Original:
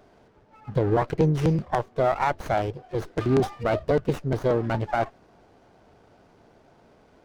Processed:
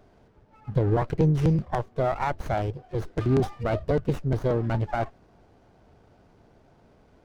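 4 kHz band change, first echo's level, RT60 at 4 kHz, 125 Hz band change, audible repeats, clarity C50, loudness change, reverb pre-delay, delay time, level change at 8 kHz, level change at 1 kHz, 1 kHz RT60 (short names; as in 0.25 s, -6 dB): -4.0 dB, none, none, +2.0 dB, none, none, -1.0 dB, none, none, n/a, -3.5 dB, none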